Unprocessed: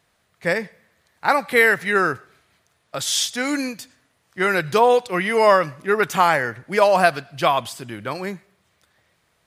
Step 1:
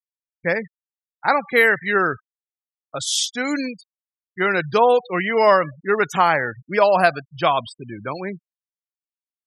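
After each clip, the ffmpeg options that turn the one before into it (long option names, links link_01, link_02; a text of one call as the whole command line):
ffmpeg -i in.wav -af "afftfilt=real='re*gte(hypot(re,im),0.0447)':imag='im*gte(hypot(re,im),0.0447)':win_size=1024:overlap=0.75" out.wav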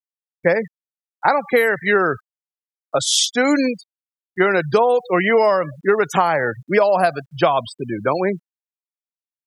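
ffmpeg -i in.wav -filter_complex "[0:a]equalizer=frequency=570:width_type=o:width=2.2:gain=8.5,acrossover=split=130|5900[link_01][link_02][link_03];[link_02]acompressor=threshold=-16dB:ratio=16[link_04];[link_01][link_04][link_03]amix=inputs=3:normalize=0,acrusher=bits=11:mix=0:aa=0.000001,volume=4dB" out.wav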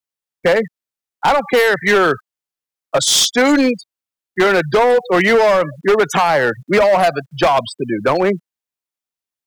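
ffmpeg -i in.wav -filter_complex "[0:a]acrossover=split=150[link_01][link_02];[link_01]acompressor=threshold=-45dB:ratio=6[link_03];[link_02]asoftclip=type=hard:threshold=-15dB[link_04];[link_03][link_04]amix=inputs=2:normalize=0,volume=6dB" out.wav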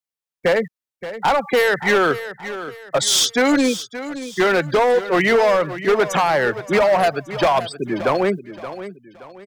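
ffmpeg -i in.wav -af "aecho=1:1:574|1148|1722:0.224|0.0784|0.0274,volume=-3.5dB" out.wav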